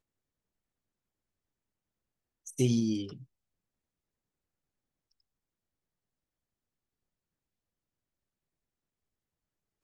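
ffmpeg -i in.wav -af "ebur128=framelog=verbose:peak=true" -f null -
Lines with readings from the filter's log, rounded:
Integrated loudness:
  I:         -30.1 LUFS
  Threshold: -42.4 LUFS
Loudness range:
  LRA:         5.5 LU
  Threshold: -57.1 LUFS
  LRA low:   -41.9 LUFS
  LRA high:  -36.4 LUFS
True peak:
  Peak:      -14.6 dBFS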